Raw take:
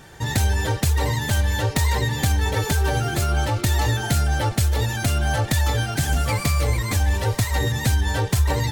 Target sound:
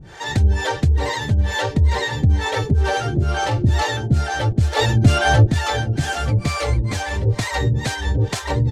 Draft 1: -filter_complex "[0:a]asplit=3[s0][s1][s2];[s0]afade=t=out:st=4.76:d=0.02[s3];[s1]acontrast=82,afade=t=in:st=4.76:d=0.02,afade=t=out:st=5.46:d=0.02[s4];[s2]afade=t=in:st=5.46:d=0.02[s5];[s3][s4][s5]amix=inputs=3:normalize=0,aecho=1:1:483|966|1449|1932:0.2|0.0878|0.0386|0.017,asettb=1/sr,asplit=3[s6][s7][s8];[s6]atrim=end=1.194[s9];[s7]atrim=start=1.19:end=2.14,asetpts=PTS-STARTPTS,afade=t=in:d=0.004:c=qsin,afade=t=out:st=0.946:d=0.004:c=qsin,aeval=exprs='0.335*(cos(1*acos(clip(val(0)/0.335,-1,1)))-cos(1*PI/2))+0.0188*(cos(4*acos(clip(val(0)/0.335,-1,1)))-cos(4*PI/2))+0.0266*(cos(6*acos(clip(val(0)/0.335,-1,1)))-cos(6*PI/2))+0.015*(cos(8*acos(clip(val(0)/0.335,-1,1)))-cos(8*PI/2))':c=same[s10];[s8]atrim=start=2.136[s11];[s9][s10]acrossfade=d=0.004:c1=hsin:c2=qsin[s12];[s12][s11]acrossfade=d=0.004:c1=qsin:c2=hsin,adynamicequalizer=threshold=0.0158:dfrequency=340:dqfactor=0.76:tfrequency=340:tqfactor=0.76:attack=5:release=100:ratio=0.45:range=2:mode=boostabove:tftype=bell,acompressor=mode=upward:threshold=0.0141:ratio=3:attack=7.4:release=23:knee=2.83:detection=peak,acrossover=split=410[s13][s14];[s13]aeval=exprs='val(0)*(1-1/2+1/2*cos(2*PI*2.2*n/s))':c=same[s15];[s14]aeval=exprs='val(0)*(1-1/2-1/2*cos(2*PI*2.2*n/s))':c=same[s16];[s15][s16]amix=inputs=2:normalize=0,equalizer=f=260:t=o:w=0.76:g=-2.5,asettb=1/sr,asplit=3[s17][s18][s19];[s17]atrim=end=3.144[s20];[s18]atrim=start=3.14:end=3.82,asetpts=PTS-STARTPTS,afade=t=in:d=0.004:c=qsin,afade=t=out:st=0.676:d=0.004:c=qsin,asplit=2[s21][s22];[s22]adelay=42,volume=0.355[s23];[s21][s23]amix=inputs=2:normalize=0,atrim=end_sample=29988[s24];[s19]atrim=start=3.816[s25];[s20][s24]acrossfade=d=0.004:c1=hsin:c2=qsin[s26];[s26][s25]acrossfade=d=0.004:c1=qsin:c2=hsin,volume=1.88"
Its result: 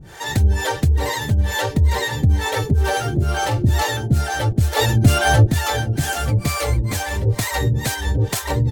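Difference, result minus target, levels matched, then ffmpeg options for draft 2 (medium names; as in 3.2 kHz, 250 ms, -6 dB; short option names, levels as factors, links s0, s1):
8 kHz band +4.5 dB
-filter_complex "[0:a]asplit=3[s0][s1][s2];[s0]afade=t=out:st=4.76:d=0.02[s3];[s1]acontrast=82,afade=t=in:st=4.76:d=0.02,afade=t=out:st=5.46:d=0.02[s4];[s2]afade=t=in:st=5.46:d=0.02[s5];[s3][s4][s5]amix=inputs=3:normalize=0,aecho=1:1:483|966|1449|1932:0.2|0.0878|0.0386|0.017,asettb=1/sr,asplit=3[s6][s7][s8];[s6]atrim=end=1.194[s9];[s7]atrim=start=1.19:end=2.14,asetpts=PTS-STARTPTS,afade=t=in:d=0.004:c=qsin,afade=t=out:st=0.946:d=0.004:c=qsin,aeval=exprs='0.335*(cos(1*acos(clip(val(0)/0.335,-1,1)))-cos(1*PI/2))+0.0188*(cos(4*acos(clip(val(0)/0.335,-1,1)))-cos(4*PI/2))+0.0266*(cos(6*acos(clip(val(0)/0.335,-1,1)))-cos(6*PI/2))+0.015*(cos(8*acos(clip(val(0)/0.335,-1,1)))-cos(8*PI/2))':c=same[s10];[s8]atrim=start=2.136[s11];[s9][s10]acrossfade=d=0.004:c1=hsin:c2=qsin[s12];[s12][s11]acrossfade=d=0.004:c1=qsin:c2=hsin,adynamicequalizer=threshold=0.0158:dfrequency=340:dqfactor=0.76:tfrequency=340:tqfactor=0.76:attack=5:release=100:ratio=0.45:range=2:mode=boostabove:tftype=bell,acompressor=mode=upward:threshold=0.0141:ratio=3:attack=7.4:release=23:knee=2.83:detection=peak,acrossover=split=410[s13][s14];[s13]aeval=exprs='val(0)*(1-1/2+1/2*cos(2*PI*2.2*n/s))':c=same[s15];[s14]aeval=exprs='val(0)*(1-1/2-1/2*cos(2*PI*2.2*n/s))':c=same[s16];[s15][s16]amix=inputs=2:normalize=0,lowpass=6300,equalizer=f=260:t=o:w=0.76:g=-2.5,asettb=1/sr,asplit=3[s17][s18][s19];[s17]atrim=end=3.144[s20];[s18]atrim=start=3.14:end=3.82,asetpts=PTS-STARTPTS,afade=t=in:d=0.004:c=qsin,afade=t=out:st=0.676:d=0.004:c=qsin,asplit=2[s21][s22];[s22]adelay=42,volume=0.355[s23];[s21][s23]amix=inputs=2:normalize=0,atrim=end_sample=29988[s24];[s19]atrim=start=3.816[s25];[s20][s24]acrossfade=d=0.004:c1=hsin:c2=qsin[s26];[s26][s25]acrossfade=d=0.004:c1=qsin:c2=hsin,volume=1.88"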